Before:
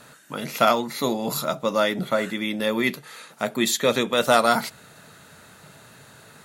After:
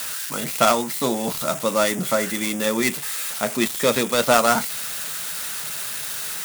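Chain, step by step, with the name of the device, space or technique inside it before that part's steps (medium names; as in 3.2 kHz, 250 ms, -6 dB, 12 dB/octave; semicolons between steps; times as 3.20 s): budget class-D amplifier (dead-time distortion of 0.12 ms; zero-crossing glitches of -15.5 dBFS); trim +1.5 dB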